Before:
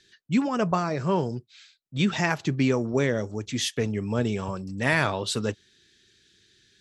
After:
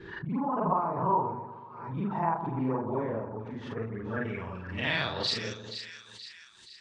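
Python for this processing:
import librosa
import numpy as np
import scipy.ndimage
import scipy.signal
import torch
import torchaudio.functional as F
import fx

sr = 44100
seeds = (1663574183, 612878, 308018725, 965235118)

p1 = fx.frame_reverse(x, sr, frame_ms=108.0)
p2 = fx.filter_sweep_lowpass(p1, sr, from_hz=960.0, to_hz=8700.0, start_s=3.53, end_s=5.98, q=5.9)
p3 = p2 + fx.echo_split(p2, sr, split_hz=1400.0, low_ms=123, high_ms=475, feedback_pct=52, wet_db=-10.0, dry=0)
p4 = fx.pre_swell(p3, sr, db_per_s=56.0)
y = p4 * librosa.db_to_amplitude(-6.5)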